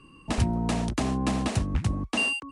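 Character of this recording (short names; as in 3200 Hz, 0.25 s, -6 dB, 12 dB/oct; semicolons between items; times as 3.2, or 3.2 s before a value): noise floor -53 dBFS; spectral tilt -5.0 dB/oct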